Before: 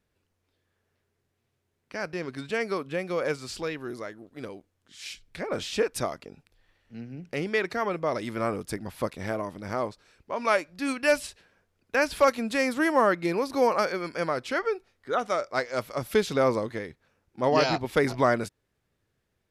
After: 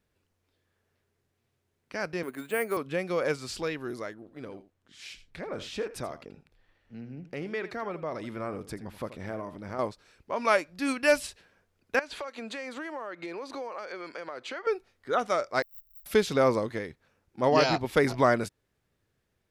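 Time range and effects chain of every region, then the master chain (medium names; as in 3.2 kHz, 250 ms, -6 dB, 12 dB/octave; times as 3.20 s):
2.23–2.77 s: three-band isolator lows -23 dB, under 190 Hz, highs -17 dB, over 3.4 kHz + careless resampling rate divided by 4×, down filtered, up hold
4.14–9.79 s: treble shelf 3.9 kHz -8.5 dB + compression 1.5:1, threshold -41 dBFS + delay 82 ms -14 dB
11.99–14.67 s: three-band isolator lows -15 dB, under 290 Hz, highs -21 dB, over 7.6 kHz + band-stop 5.3 kHz, Q 6.8 + compression 8:1, threshold -34 dBFS
15.62–16.06 s: sorted samples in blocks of 64 samples + inverse Chebyshev band-stop 120–8300 Hz, stop band 60 dB + peaking EQ 2.3 kHz +11.5 dB 2.3 oct
whole clip: none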